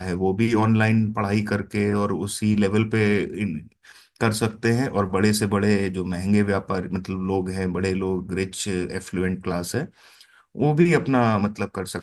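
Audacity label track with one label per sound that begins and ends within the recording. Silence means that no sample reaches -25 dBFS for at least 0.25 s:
4.210000	9.840000	sound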